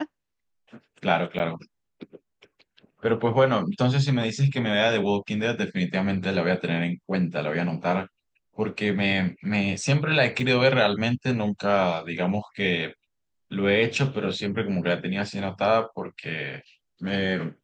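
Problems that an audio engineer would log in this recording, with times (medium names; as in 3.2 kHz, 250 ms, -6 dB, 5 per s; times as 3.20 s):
1.39–1.40 s: dropout 8.7 ms
10.40 s: dropout 2.2 ms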